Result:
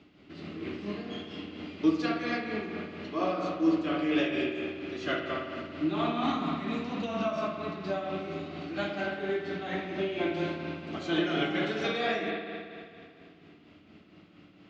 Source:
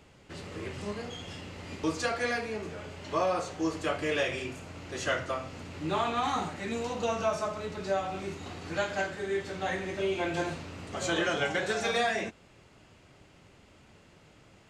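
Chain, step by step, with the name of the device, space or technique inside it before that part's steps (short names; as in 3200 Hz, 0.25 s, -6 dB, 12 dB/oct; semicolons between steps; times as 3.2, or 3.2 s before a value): combo amplifier with spring reverb and tremolo (spring tank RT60 2.4 s, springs 55 ms, chirp 30 ms, DRR 0.5 dB; tremolo 4.3 Hz, depth 43%; speaker cabinet 99–4600 Hz, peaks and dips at 120 Hz -7 dB, 200 Hz +4 dB, 300 Hz +10 dB, 510 Hz -7 dB, 910 Hz -8 dB, 1700 Hz -5 dB)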